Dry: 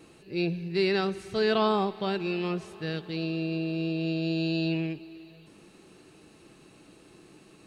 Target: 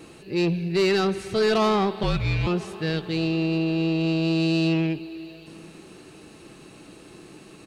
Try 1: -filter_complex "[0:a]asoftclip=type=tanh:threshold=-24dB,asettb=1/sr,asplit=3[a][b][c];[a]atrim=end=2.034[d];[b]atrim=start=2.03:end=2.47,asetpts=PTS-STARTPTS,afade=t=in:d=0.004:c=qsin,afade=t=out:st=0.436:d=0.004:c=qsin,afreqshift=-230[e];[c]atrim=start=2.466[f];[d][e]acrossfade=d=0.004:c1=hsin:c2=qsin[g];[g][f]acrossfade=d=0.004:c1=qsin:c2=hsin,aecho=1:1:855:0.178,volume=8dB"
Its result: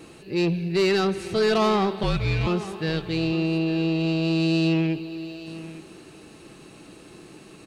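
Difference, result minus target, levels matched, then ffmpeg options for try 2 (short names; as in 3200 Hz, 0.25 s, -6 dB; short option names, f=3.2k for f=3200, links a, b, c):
echo-to-direct +9.5 dB
-filter_complex "[0:a]asoftclip=type=tanh:threshold=-24dB,asettb=1/sr,asplit=3[a][b][c];[a]atrim=end=2.034[d];[b]atrim=start=2.03:end=2.47,asetpts=PTS-STARTPTS,afade=t=in:d=0.004:c=qsin,afade=t=out:st=0.436:d=0.004:c=qsin,afreqshift=-230[e];[c]atrim=start=2.466[f];[d][e]acrossfade=d=0.004:c1=hsin:c2=qsin[g];[g][f]acrossfade=d=0.004:c1=qsin:c2=hsin,aecho=1:1:855:0.0596,volume=8dB"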